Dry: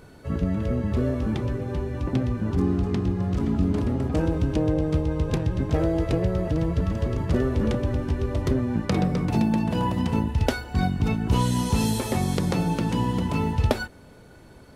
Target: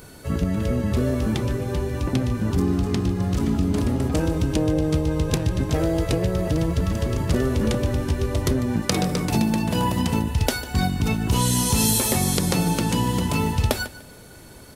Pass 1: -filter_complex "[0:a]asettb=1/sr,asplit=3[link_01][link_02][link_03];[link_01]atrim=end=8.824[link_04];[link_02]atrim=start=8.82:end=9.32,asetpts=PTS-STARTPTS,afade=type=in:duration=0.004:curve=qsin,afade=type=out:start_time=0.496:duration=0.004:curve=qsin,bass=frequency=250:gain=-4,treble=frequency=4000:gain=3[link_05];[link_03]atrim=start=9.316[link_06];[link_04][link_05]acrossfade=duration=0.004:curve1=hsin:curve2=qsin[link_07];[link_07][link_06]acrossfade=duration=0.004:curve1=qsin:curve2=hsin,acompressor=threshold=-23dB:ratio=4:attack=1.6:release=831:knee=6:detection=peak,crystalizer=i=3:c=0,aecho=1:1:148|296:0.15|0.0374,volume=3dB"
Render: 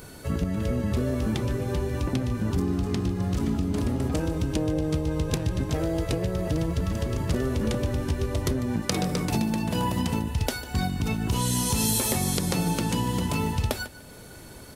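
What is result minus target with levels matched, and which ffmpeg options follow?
downward compressor: peak gain reduction +6 dB
-filter_complex "[0:a]asettb=1/sr,asplit=3[link_01][link_02][link_03];[link_01]atrim=end=8.824[link_04];[link_02]atrim=start=8.82:end=9.32,asetpts=PTS-STARTPTS,afade=type=in:duration=0.004:curve=qsin,afade=type=out:start_time=0.496:duration=0.004:curve=qsin,bass=frequency=250:gain=-4,treble=frequency=4000:gain=3[link_05];[link_03]atrim=start=9.316[link_06];[link_04][link_05]acrossfade=duration=0.004:curve1=hsin:curve2=qsin[link_07];[link_07][link_06]acrossfade=duration=0.004:curve1=qsin:curve2=hsin,acompressor=threshold=-15dB:ratio=4:attack=1.6:release=831:knee=6:detection=peak,crystalizer=i=3:c=0,aecho=1:1:148|296:0.15|0.0374,volume=3dB"

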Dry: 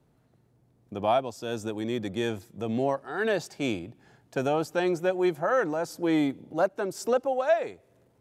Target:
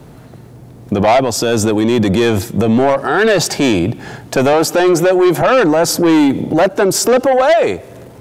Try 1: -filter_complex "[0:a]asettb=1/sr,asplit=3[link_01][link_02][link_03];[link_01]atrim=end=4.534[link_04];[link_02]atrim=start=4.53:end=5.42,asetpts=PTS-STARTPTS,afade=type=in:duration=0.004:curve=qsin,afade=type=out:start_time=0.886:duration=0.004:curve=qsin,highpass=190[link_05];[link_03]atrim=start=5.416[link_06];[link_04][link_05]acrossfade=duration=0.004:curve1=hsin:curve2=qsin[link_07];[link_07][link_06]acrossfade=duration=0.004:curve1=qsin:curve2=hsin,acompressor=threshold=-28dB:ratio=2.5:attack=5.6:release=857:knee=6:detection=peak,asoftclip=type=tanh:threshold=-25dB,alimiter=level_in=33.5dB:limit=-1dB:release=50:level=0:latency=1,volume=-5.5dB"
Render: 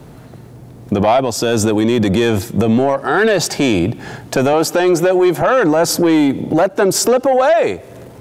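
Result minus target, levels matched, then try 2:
downward compressor: peak gain reduction +8 dB
-filter_complex "[0:a]asettb=1/sr,asplit=3[link_01][link_02][link_03];[link_01]atrim=end=4.534[link_04];[link_02]atrim=start=4.53:end=5.42,asetpts=PTS-STARTPTS,afade=type=in:duration=0.004:curve=qsin,afade=type=out:start_time=0.886:duration=0.004:curve=qsin,highpass=190[link_05];[link_03]atrim=start=5.416[link_06];[link_04][link_05]acrossfade=duration=0.004:curve1=hsin:curve2=qsin[link_07];[link_07][link_06]acrossfade=duration=0.004:curve1=qsin:curve2=hsin,asoftclip=type=tanh:threshold=-25dB,alimiter=level_in=33.5dB:limit=-1dB:release=50:level=0:latency=1,volume=-5.5dB"

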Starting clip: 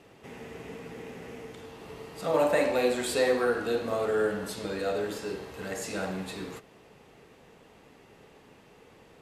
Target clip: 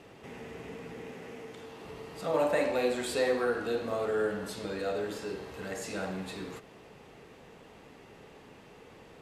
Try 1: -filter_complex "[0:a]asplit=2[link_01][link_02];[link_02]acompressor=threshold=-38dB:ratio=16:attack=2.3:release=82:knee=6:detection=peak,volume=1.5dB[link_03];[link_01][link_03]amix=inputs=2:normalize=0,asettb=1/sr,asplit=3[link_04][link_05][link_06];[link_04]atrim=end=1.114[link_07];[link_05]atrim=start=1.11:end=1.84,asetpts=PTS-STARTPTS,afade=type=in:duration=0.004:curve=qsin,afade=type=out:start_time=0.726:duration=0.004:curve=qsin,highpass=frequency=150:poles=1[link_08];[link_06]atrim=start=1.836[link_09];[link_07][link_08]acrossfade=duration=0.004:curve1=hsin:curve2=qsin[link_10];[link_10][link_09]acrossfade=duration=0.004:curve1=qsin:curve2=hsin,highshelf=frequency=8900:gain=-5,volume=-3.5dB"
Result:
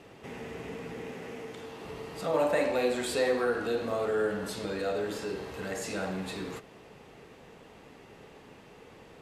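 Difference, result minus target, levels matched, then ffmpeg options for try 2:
downward compressor: peak gain reduction −11 dB
-filter_complex "[0:a]asplit=2[link_01][link_02];[link_02]acompressor=threshold=-49.5dB:ratio=16:attack=2.3:release=82:knee=6:detection=peak,volume=1.5dB[link_03];[link_01][link_03]amix=inputs=2:normalize=0,asettb=1/sr,asplit=3[link_04][link_05][link_06];[link_04]atrim=end=1.114[link_07];[link_05]atrim=start=1.11:end=1.84,asetpts=PTS-STARTPTS,afade=type=in:duration=0.004:curve=qsin,afade=type=out:start_time=0.726:duration=0.004:curve=qsin,highpass=frequency=150:poles=1[link_08];[link_06]atrim=start=1.836[link_09];[link_07][link_08]acrossfade=duration=0.004:curve1=hsin:curve2=qsin[link_10];[link_10][link_09]acrossfade=duration=0.004:curve1=qsin:curve2=hsin,highshelf=frequency=8900:gain=-5,volume=-3.5dB"

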